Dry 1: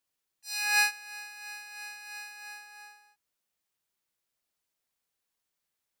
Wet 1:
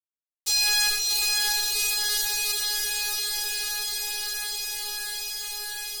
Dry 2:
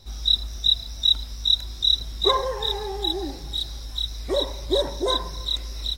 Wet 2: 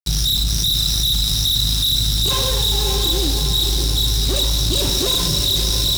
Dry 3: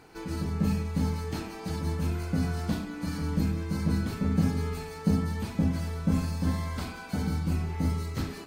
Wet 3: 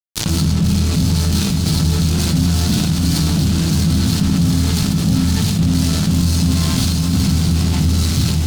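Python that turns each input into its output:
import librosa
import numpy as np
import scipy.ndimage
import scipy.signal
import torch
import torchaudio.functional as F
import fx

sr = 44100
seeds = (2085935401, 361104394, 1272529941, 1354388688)

p1 = scipy.signal.sosfilt(scipy.signal.butter(2, 8400.0, 'lowpass', fs=sr, output='sos'), x)
p2 = fx.high_shelf(p1, sr, hz=2700.0, db=8.5)
p3 = fx.fuzz(p2, sr, gain_db=37.0, gate_db=-33.0)
p4 = fx.graphic_eq(p3, sr, hz=(125, 500, 1000, 2000, 4000), db=(10, -9, -6, -9, 3))
p5 = p4 + fx.echo_diffused(p4, sr, ms=617, feedback_pct=59, wet_db=-6.5, dry=0)
p6 = fx.rev_gated(p5, sr, seeds[0], gate_ms=100, shape='rising', drr_db=9.5)
p7 = fx.env_flatten(p6, sr, amount_pct=70)
y = p7 * 10.0 ** (-5.0 / 20.0)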